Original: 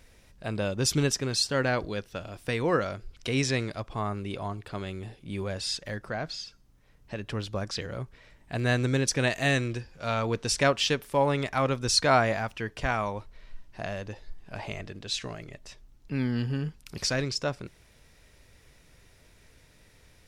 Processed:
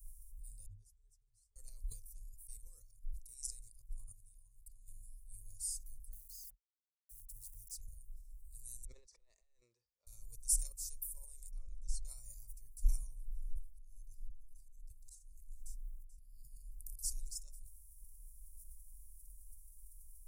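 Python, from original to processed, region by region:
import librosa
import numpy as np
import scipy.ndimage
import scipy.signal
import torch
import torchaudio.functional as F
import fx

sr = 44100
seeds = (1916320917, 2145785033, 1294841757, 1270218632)

y = fx.chain(x, sr, fx.peak_eq(hz=350.0, db=-10.5, octaves=2.8),
    fx.octave_resonator(note='G#', decay_s=0.14), at=(0.66, 1.56))
y = fx.chain(y, sr, fx.peak_eq(hz=160.0, db=-3.0, octaves=1.0),
    fx.level_steps(step_db=15), at=(2.29, 4.88))
y = fx.chain(y, sr, fx.highpass(hz=60.0, slope=6),
    fx.sample_gate(floor_db=-48.5), at=(6.13, 7.76))
y = fx.chain(y, sr, fx.cabinet(low_hz=230.0, low_slope=24, high_hz=2800.0, hz=(240.0, 460.0, 750.0, 1100.0, 1600.0, 2600.0), db=(-7, 3, 5, 3, 3, -6)),
    fx.over_compress(threshold_db=-33.0, ratio=-1.0), at=(8.85, 10.07))
y = fx.chain(y, sr, fx.spacing_loss(db_at_10k=24),
    fx.comb(ms=4.2, depth=0.39),
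    fx.band_squash(depth_pct=40), at=(11.51, 12.05))
y = fx.chain(y, sr, fx.auto_swell(attack_ms=504.0),
    fx.echo_single(ms=435, db=-15.0), at=(12.92, 16.99))
y = scipy.signal.sosfilt(scipy.signal.cheby2(4, 60, [130.0, 3400.0], 'bandstop', fs=sr, output='sos'), y)
y = fx.peak_eq(y, sr, hz=720.0, db=-13.0, octaves=0.36)
y = fx.sustainer(y, sr, db_per_s=110.0)
y = y * librosa.db_to_amplitude(9.0)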